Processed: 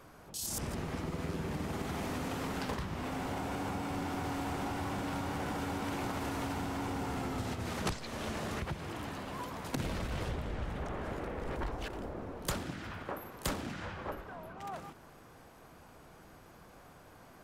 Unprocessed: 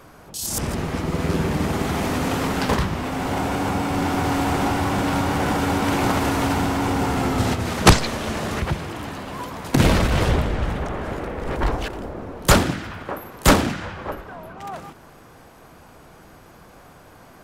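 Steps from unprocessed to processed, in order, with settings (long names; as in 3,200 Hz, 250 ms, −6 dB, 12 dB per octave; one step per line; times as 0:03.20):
downward compressor 5 to 1, threshold −25 dBFS, peak gain reduction 16.5 dB
level −9 dB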